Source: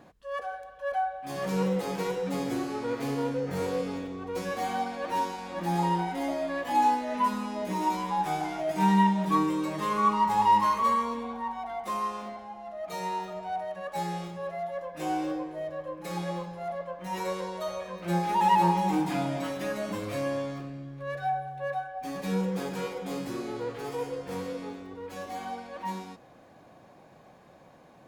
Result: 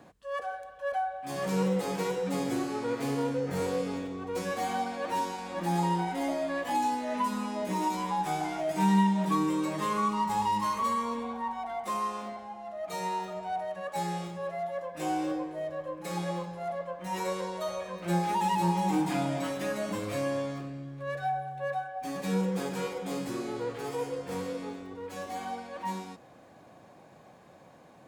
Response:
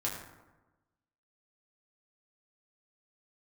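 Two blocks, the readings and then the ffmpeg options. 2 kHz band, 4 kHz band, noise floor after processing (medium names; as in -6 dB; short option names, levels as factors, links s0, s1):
-1.0 dB, -0.5 dB, -55 dBFS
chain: -filter_complex "[0:a]highpass=53,equalizer=f=8100:w=2.4:g=4.5,acrossover=split=320|3000[s0][s1][s2];[s1]acompressor=threshold=0.0447:ratio=6[s3];[s0][s3][s2]amix=inputs=3:normalize=0"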